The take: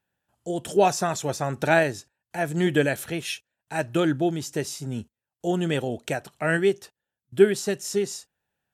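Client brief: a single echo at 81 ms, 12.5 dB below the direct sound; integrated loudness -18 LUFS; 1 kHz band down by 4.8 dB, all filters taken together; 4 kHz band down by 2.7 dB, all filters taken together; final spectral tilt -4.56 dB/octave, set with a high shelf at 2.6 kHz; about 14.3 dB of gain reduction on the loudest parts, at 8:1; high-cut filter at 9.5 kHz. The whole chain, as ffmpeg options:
-af "lowpass=9500,equalizer=f=1000:t=o:g=-8,highshelf=f=2600:g=4.5,equalizer=f=4000:t=o:g=-7.5,acompressor=threshold=0.0501:ratio=8,aecho=1:1:81:0.237,volume=5.31"

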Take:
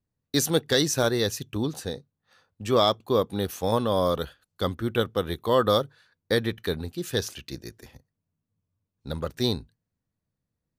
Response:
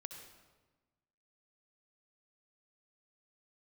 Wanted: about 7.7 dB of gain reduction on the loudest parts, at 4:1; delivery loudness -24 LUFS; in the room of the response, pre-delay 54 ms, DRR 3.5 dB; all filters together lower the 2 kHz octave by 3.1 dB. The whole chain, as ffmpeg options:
-filter_complex "[0:a]equalizer=f=2000:t=o:g=-4,acompressor=threshold=0.0501:ratio=4,asplit=2[s0][s1];[1:a]atrim=start_sample=2205,adelay=54[s2];[s1][s2]afir=irnorm=-1:irlink=0,volume=1.06[s3];[s0][s3]amix=inputs=2:normalize=0,volume=2.11"

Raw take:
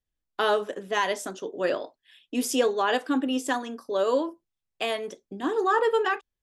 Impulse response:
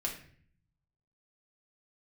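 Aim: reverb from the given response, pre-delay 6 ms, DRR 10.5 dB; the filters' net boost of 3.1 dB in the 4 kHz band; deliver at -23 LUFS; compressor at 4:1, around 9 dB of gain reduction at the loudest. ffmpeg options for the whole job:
-filter_complex "[0:a]equalizer=f=4000:t=o:g=4.5,acompressor=threshold=0.0355:ratio=4,asplit=2[s0][s1];[1:a]atrim=start_sample=2205,adelay=6[s2];[s1][s2]afir=irnorm=-1:irlink=0,volume=0.224[s3];[s0][s3]amix=inputs=2:normalize=0,volume=3.16"

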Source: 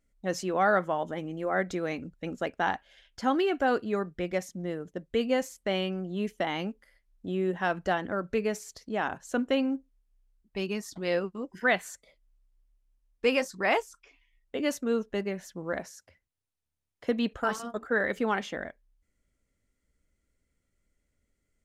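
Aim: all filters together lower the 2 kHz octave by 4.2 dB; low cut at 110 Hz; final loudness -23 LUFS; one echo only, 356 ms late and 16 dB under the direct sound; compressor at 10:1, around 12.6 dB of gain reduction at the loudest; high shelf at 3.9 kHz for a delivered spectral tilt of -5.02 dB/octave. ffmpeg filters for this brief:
-af "highpass=110,equalizer=f=2000:t=o:g=-4,highshelf=f=3900:g=-6.5,acompressor=threshold=0.02:ratio=10,aecho=1:1:356:0.158,volume=7.08"

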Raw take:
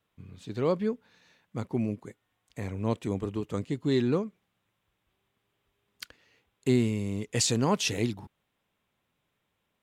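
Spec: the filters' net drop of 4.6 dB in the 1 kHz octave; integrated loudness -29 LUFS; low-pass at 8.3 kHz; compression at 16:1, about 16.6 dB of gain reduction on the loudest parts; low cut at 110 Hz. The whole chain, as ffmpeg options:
-af "highpass=110,lowpass=8300,equalizer=f=1000:t=o:g=-5.5,acompressor=threshold=0.0141:ratio=16,volume=5.62"

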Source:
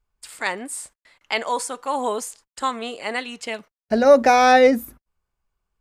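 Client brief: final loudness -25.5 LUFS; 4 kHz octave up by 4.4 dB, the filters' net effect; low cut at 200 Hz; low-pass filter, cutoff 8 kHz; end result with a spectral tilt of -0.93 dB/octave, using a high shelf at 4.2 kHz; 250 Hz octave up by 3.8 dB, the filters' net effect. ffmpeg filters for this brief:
-af "highpass=200,lowpass=8000,equalizer=f=250:t=o:g=5.5,equalizer=f=4000:t=o:g=8.5,highshelf=f=4200:g=-5,volume=0.447"

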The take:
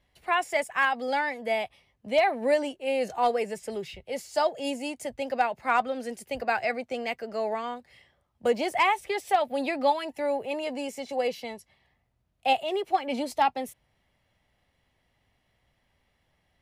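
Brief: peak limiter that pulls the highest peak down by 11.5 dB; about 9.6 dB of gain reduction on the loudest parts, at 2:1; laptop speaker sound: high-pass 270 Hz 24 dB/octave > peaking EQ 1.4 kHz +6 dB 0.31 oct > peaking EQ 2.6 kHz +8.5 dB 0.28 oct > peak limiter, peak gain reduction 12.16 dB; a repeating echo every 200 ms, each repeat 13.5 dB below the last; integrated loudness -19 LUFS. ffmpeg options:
-af "acompressor=threshold=0.0158:ratio=2,alimiter=level_in=2.66:limit=0.0631:level=0:latency=1,volume=0.376,highpass=f=270:w=0.5412,highpass=f=270:w=1.3066,equalizer=f=1400:t=o:w=0.31:g=6,equalizer=f=2600:t=o:w=0.28:g=8.5,aecho=1:1:200|400:0.211|0.0444,volume=25.1,alimiter=limit=0.282:level=0:latency=1"

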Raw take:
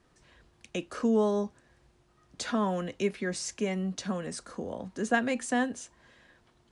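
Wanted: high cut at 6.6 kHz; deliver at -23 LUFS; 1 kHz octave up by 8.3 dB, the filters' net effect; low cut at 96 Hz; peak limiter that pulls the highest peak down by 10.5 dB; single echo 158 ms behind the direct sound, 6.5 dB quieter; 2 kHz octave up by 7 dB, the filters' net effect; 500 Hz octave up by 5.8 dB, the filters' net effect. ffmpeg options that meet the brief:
-af "highpass=96,lowpass=6600,equalizer=f=500:t=o:g=5,equalizer=f=1000:t=o:g=8,equalizer=f=2000:t=o:g=5.5,alimiter=limit=0.15:level=0:latency=1,aecho=1:1:158:0.473,volume=1.78"

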